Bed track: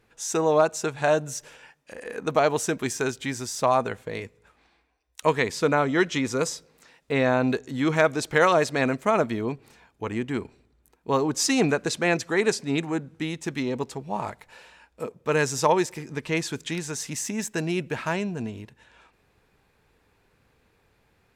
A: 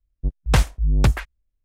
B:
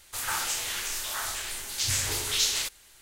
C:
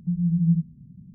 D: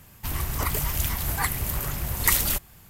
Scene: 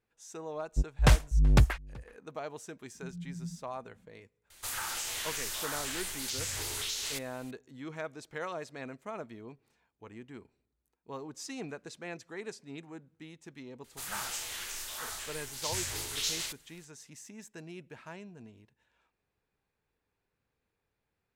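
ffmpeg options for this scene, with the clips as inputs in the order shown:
ffmpeg -i bed.wav -i cue0.wav -i cue1.wav -i cue2.wav -filter_complex "[2:a]asplit=2[link_01][link_02];[0:a]volume=-19dB[link_03];[1:a]asplit=2[link_04][link_05];[link_05]adelay=379,volume=-25dB,highshelf=frequency=4000:gain=-8.53[link_06];[link_04][link_06]amix=inputs=2:normalize=0[link_07];[3:a]aecho=1:1:3.6:0.8[link_08];[link_01]acompressor=threshold=-30dB:ratio=6:attack=3.2:release=140:knee=1:detection=peak[link_09];[link_07]atrim=end=1.64,asetpts=PTS-STARTPTS,volume=-4.5dB,afade=type=in:duration=0.004:curve=hsin,afade=type=out:start_time=1.636:duration=0.004:curve=hsin,adelay=530[link_10];[link_08]atrim=end=1.14,asetpts=PTS-STARTPTS,volume=-16dB,afade=type=in:duration=0.004:curve=hsin,afade=type=out:start_time=1.136:duration=0.004:curve=hsin,adelay=2950[link_11];[link_09]atrim=end=3.01,asetpts=PTS-STARTPTS,volume=-2dB,afade=type=in:duration=0.004:curve=hsin,afade=type=out:start_time=3.006:duration=0.004:curve=hsin,adelay=4500[link_12];[link_02]atrim=end=3.01,asetpts=PTS-STARTPTS,volume=-7.5dB,afade=type=in:duration=0.004:curve=hsin,afade=type=out:start_time=3.006:duration=0.004:curve=hsin,adelay=13840[link_13];[link_03][link_10][link_11][link_12][link_13]amix=inputs=5:normalize=0" out.wav

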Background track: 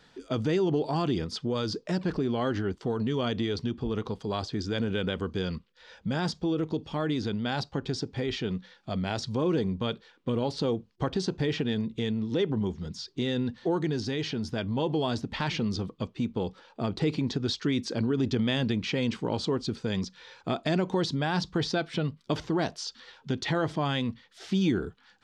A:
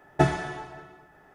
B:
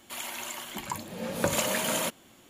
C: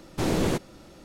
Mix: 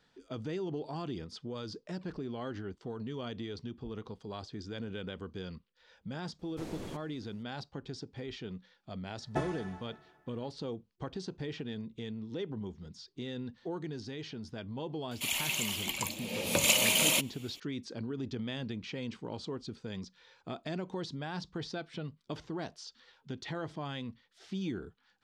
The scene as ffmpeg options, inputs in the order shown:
ffmpeg -i bed.wav -i cue0.wav -i cue1.wav -i cue2.wav -filter_complex "[0:a]volume=-11dB[link_01];[2:a]highshelf=frequency=2000:width_type=q:width=3:gain=6.5[link_02];[3:a]atrim=end=1.04,asetpts=PTS-STARTPTS,volume=-18dB,afade=type=in:duration=0.004:curve=hsin,afade=type=out:start_time=1.036:duration=0.004:curve=hsin,adelay=6390[link_03];[1:a]atrim=end=1.34,asetpts=PTS-STARTPTS,volume=-12.5dB,afade=type=in:duration=0.004:curve=hsin,afade=type=out:start_time=1.336:duration=0.004:curve=hsin,adelay=9160[link_04];[link_02]atrim=end=2.49,asetpts=PTS-STARTPTS,volume=-3.5dB,afade=type=in:duration=0.004:curve=hsin,afade=type=out:start_time=2.486:duration=0.004:curve=hsin,adelay=15110[link_05];[link_01][link_03][link_04][link_05]amix=inputs=4:normalize=0" out.wav

